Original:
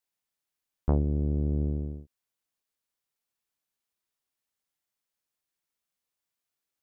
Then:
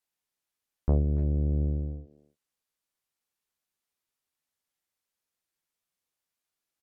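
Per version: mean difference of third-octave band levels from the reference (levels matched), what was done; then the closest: 1.5 dB: self-modulated delay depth 0.064 ms; treble ducked by the level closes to 650 Hz, closed at -27.5 dBFS; doubler 12 ms -10.5 dB; speakerphone echo 0.29 s, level -14 dB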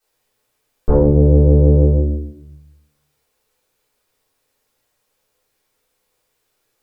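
3.0 dB: bell 480 Hz +9.5 dB 0.91 oct; limiter -19.5 dBFS, peak gain reduction 10.5 dB; vibrato 6.2 Hz 14 cents; shoebox room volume 130 m³, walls mixed, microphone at 3.6 m; gain +6 dB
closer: first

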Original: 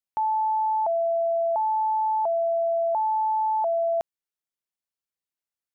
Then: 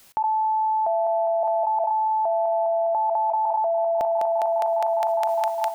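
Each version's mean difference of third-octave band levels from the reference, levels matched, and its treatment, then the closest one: 3.0 dB: step gate "x.xxxxxxxxxx.." 126 bpm -24 dB; on a send: thinning echo 0.204 s, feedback 76%, high-pass 530 Hz, level -5.5 dB; on the sum: fast leveller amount 100%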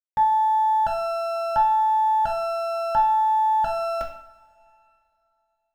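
8.5 dB: minimum comb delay 3.5 ms; bit-crush 10-bit; two-slope reverb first 0.57 s, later 2.7 s, from -20 dB, DRR 1 dB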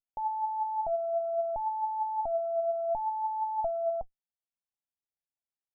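1.0 dB: minimum comb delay 1.2 ms; flange 0.57 Hz, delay 0.6 ms, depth 5.7 ms, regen +64%; elliptic low-pass 820 Hz, stop band 80 dB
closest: third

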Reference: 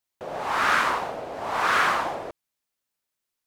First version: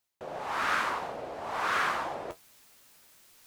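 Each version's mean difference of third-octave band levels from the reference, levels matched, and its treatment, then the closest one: 1.0 dB: reverse; upward compressor, threshold -26 dBFS; reverse; flange 1.2 Hz, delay 9.3 ms, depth 6 ms, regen -53%; gain -3 dB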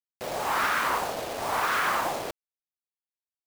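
6.0 dB: limiter -17 dBFS, peak gain reduction 7 dB; bit-crush 6-bit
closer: first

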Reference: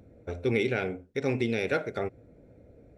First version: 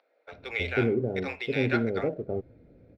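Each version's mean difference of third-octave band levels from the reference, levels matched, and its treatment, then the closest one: 5.5 dB: steep low-pass 5200 Hz 72 dB/oct; bands offset in time highs, lows 0.32 s, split 650 Hz; in parallel at -10 dB: backlash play -40.5 dBFS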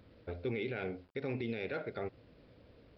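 4.0 dB: limiter -21 dBFS, peak gain reduction 7 dB; requantised 10-bit, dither none; downsampling 11025 Hz; gain -6 dB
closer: second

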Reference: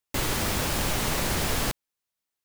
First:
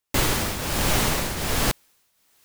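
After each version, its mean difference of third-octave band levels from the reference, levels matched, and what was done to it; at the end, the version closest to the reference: 2.5 dB: reverse; upward compressor, threshold -47 dBFS; reverse; tremolo triangle 1.3 Hz, depth 70%; gain +6.5 dB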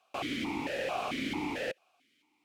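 10.0 dB: in parallel at -8 dB: requantised 8-bit, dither triangular; on the sum: vowel sequencer 4.5 Hz; gain +4 dB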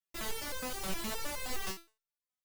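5.5 dB: bell 280 Hz -6.5 dB 0.24 oct; stepped resonator 9.6 Hz 190–520 Hz; gain +3 dB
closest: first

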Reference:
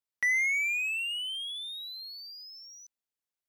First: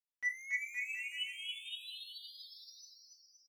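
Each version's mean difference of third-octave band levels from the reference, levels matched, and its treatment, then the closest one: 5.0 dB: in parallel at +0.5 dB: limiter -31.5 dBFS, peak gain reduction 11 dB; on the sum: resonator bank B3 sus4, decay 0.27 s; bouncing-ball echo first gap 0.28 s, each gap 0.85×, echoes 5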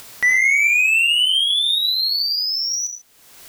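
2.0 dB: upward compressor, threshold -31 dBFS; non-linear reverb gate 0.16 s flat, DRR 6.5 dB; maximiser +25 dB; gain -8.5 dB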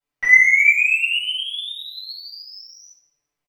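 3.5 dB: high shelf 3500 Hz -11 dB; comb 6.9 ms, depth 77%; shoebox room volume 430 m³, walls mixed, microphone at 7.3 m; gain -1 dB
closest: second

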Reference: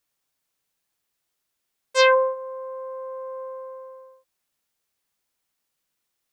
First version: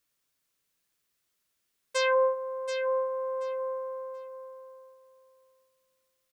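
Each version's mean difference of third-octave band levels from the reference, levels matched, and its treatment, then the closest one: 2.5 dB: limiter -16 dBFS, peak gain reduction 11 dB; bell 800 Hz -7 dB 0.42 oct; on a send: feedback echo 0.73 s, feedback 19%, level -8.5 dB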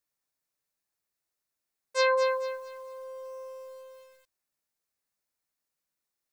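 4.5 dB: bell 3100 Hz -7 dB 0.34 oct; resonator 590 Hz, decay 0.26 s, harmonics odd, mix 60%; lo-fi delay 0.224 s, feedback 35%, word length 9-bit, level -7.5 dB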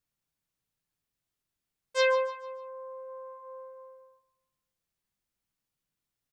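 1.5 dB: tone controls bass +13 dB, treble -1 dB; flange 0.39 Hz, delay 5.5 ms, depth 1.8 ms, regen -64%; on a send: feedback echo 0.148 s, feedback 39%, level -14 dB; on the sum: gain -4.5 dB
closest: third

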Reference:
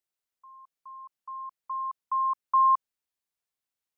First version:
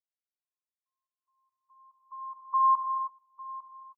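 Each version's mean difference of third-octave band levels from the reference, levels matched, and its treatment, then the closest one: 1.0 dB: per-bin expansion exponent 3; LPF 1100 Hz 12 dB/oct; on a send: echo 0.852 s -18 dB; on the sum: non-linear reverb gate 0.35 s flat, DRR 3 dB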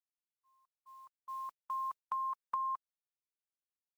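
4.5 dB: spectral contrast lowered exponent 0.64; expander -38 dBFS; dynamic EQ 1100 Hz, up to +5 dB, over -32 dBFS; compressor 10:1, threshold -32 dBFS, peak gain reduction 17.5 dB; gain -3 dB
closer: first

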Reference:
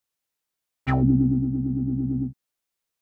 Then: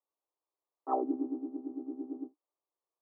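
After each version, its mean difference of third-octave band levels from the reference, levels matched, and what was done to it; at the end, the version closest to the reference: 8.0 dB: Chebyshev band-pass 300–1200 Hz, order 5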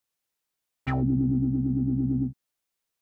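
1.0 dB: limiter -17.5 dBFS, peak gain reduction 7 dB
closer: second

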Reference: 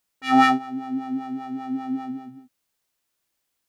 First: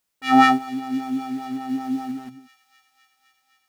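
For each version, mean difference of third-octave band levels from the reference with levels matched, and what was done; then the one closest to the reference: 3.5 dB: in parallel at -11 dB: bit-crush 6-bit; on the sum: thin delay 0.257 s, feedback 82%, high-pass 3000 Hz, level -18.5 dB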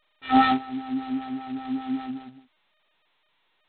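5.0 dB: G.711 law mismatch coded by A; G.726 16 kbps 8000 Hz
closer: first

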